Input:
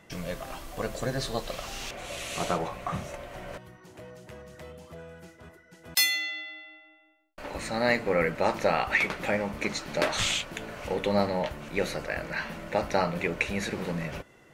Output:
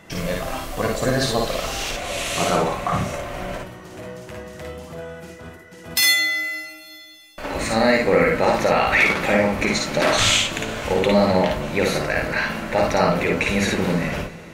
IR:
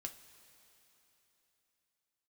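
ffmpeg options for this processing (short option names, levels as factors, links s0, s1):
-filter_complex "[0:a]alimiter=limit=0.141:level=0:latency=1:release=15,asplit=2[s0][s1];[1:a]atrim=start_sample=2205,adelay=54[s2];[s1][s2]afir=irnorm=-1:irlink=0,volume=1.33[s3];[s0][s3]amix=inputs=2:normalize=0,volume=2.66"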